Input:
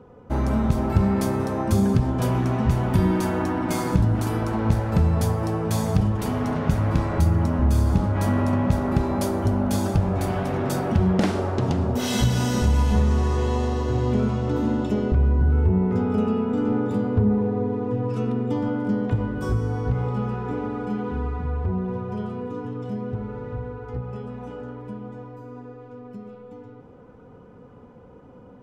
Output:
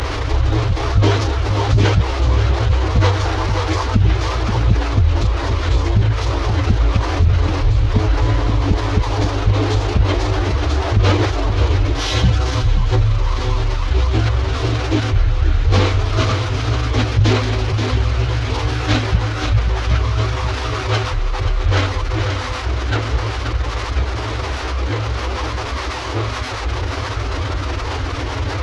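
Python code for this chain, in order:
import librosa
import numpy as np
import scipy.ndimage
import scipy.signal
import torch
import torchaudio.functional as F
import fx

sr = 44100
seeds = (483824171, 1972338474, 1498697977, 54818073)

p1 = fx.delta_mod(x, sr, bps=32000, step_db=-24.5)
p2 = scipy.signal.sosfilt(scipy.signal.butter(4, 73.0, 'highpass', fs=sr, output='sos'), p1)
p3 = fx.dereverb_blind(p2, sr, rt60_s=1.2)
p4 = scipy.signal.sosfilt(scipy.signal.cheby1(4, 1.0, [210.0, 550.0], 'bandstop', fs=sr, output='sos'), p3)
p5 = fx.low_shelf_res(p4, sr, hz=230.0, db=6.5, q=1.5)
p6 = fx.leveller(p5, sr, passes=1)
p7 = fx.pitch_keep_formants(p6, sr, semitones=-11.5)
p8 = p7 + fx.echo_single(p7, sr, ms=530, db=-11.0, dry=0)
p9 = fx.env_flatten(p8, sr, amount_pct=50)
y = p9 * librosa.db_to_amplitude(-1.5)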